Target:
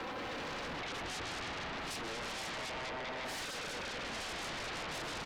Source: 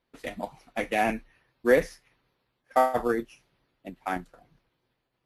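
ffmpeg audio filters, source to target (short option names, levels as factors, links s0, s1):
-filter_complex "[0:a]areverse,asplit=2[s0][s1];[s1]adelay=198,lowpass=f=1100:p=1,volume=0.266,asplit=2[s2][s3];[s3]adelay=198,lowpass=f=1100:p=1,volume=0.33,asplit=2[s4][s5];[s5]adelay=198,lowpass=f=1100:p=1,volume=0.33[s6];[s2][s4][s6]amix=inputs=3:normalize=0[s7];[s0][s7]amix=inputs=2:normalize=0,acompressor=threshold=0.0158:ratio=6,asplit=2[s8][s9];[s9]highpass=f=720:p=1,volume=17.8,asoftclip=type=tanh:threshold=0.0447[s10];[s8][s10]amix=inputs=2:normalize=0,lowpass=f=1400:p=1,volume=0.501,highpass=f=80:w=0.5412,highpass=f=80:w=1.3066,highshelf=f=3200:g=-11.5,asplit=2[s11][s12];[s12]aecho=0:1:156|312|468|624|780|936|1092|1248:0.668|0.394|0.233|0.137|0.081|0.0478|0.0282|0.0166[s13];[s11][s13]amix=inputs=2:normalize=0,asoftclip=type=tanh:threshold=0.0211,alimiter=level_in=35.5:limit=0.0631:level=0:latency=1:release=84,volume=0.0282,aecho=1:1:3.8:0.68,aeval=exprs='0.00299*sin(PI/2*4.47*val(0)/0.00299)':c=same,volume=4.22"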